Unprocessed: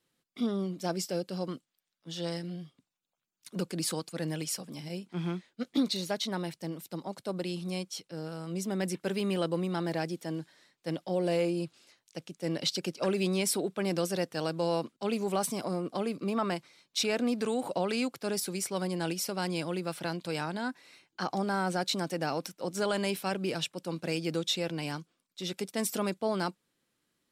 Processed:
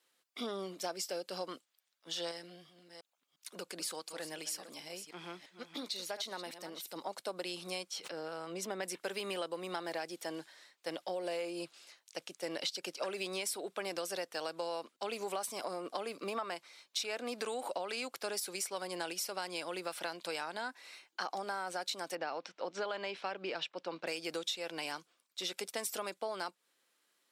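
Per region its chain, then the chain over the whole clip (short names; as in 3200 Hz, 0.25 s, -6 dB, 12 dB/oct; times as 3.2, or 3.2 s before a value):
2.31–6.96 reverse delay 0.35 s, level -13.5 dB + compressor 1.5:1, threshold -48 dBFS
7.91–8.83 high shelf 5200 Hz -11 dB + backwards sustainer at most 87 dB/s
22.15–24.07 Bessel low-pass 3400 Hz, order 4 + upward compressor, threshold -47 dBFS
whole clip: HPF 550 Hz 12 dB/oct; compressor, threshold -39 dBFS; gain +4 dB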